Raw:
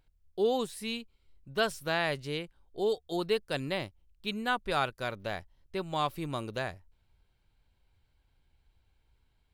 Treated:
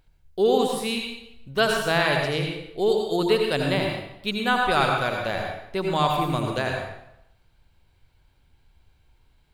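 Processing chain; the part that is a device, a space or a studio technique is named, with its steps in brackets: bathroom (reverb RT60 0.80 s, pre-delay 74 ms, DRR 1 dB); gain +7 dB

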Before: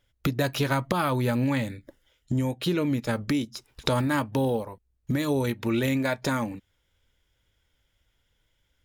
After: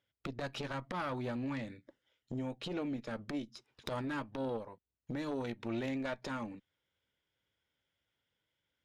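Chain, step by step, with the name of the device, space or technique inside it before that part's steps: valve radio (BPF 140–5000 Hz; tube stage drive 21 dB, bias 0.55; core saturation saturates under 290 Hz); gain -7 dB

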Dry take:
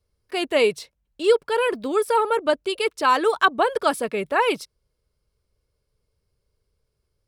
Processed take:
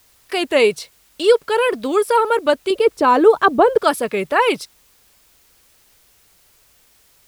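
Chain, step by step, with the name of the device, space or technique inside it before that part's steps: 2.7–3.78 tilt shelf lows +9 dB; noise-reduction cassette on a plain deck (mismatched tape noise reduction encoder only; wow and flutter; white noise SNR 37 dB); gain +4.5 dB

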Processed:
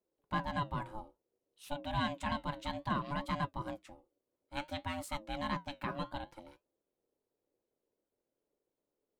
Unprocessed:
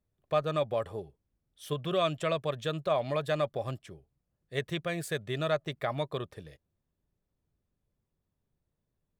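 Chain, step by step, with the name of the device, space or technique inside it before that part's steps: alien voice (ring modulator 430 Hz; flange 0.58 Hz, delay 5 ms, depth 7.2 ms, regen -71%); gain +1 dB

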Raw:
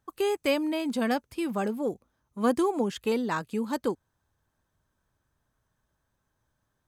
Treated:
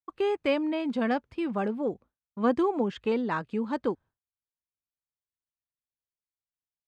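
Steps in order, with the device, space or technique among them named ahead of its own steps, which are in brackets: hearing-loss simulation (LPF 3000 Hz 12 dB/oct; expander -45 dBFS)

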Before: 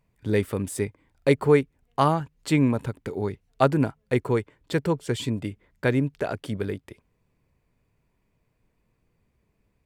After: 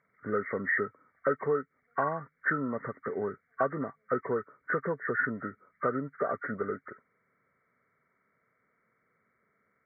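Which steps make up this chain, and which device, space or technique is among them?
hearing aid with frequency lowering (nonlinear frequency compression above 1100 Hz 4:1; compressor 4:1, threshold -25 dBFS, peak gain reduction 11 dB; speaker cabinet 280–6700 Hz, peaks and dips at 320 Hz -9 dB, 860 Hz -9 dB, 1500 Hz +3 dB); gain +2 dB

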